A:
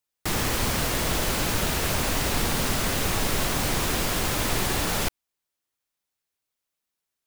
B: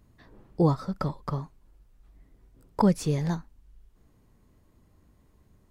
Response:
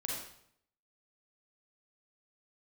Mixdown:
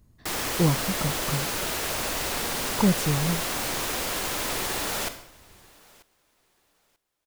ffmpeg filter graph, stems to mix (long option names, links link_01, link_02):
-filter_complex "[0:a]bass=frequency=250:gain=-10,treble=frequency=4000:gain=1,volume=-5dB,asplit=3[link_01][link_02][link_03];[link_02]volume=-7.5dB[link_04];[link_03]volume=-22.5dB[link_05];[1:a]bass=frequency=250:gain=5,treble=frequency=4000:gain=7,volume=-3dB[link_06];[2:a]atrim=start_sample=2205[link_07];[link_04][link_07]afir=irnorm=-1:irlink=0[link_08];[link_05]aecho=0:1:938|1876|2814:1|0.2|0.04[link_09];[link_01][link_06][link_08][link_09]amix=inputs=4:normalize=0"